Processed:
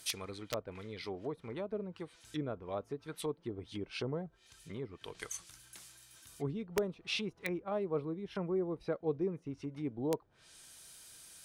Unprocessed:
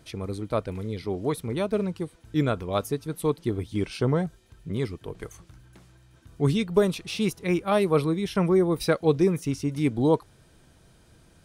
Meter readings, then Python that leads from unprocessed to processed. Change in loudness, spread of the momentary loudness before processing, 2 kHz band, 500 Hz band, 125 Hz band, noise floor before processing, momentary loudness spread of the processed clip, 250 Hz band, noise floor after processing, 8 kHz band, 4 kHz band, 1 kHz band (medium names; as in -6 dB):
-13.0 dB, 11 LU, -9.5 dB, -12.5 dB, -16.0 dB, -57 dBFS, 17 LU, -14.0 dB, -67 dBFS, -4.5 dB, -6.0 dB, -14.0 dB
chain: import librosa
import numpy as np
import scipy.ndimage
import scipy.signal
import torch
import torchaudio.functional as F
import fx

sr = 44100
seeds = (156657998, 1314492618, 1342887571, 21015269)

y = fx.env_lowpass_down(x, sr, base_hz=540.0, full_db=-23.0)
y = F.preemphasis(torch.from_numpy(y), 0.97).numpy()
y = (np.mod(10.0 ** (35.5 / 20.0) * y + 1.0, 2.0) - 1.0) / 10.0 ** (35.5 / 20.0)
y = y * librosa.db_to_amplitude(12.5)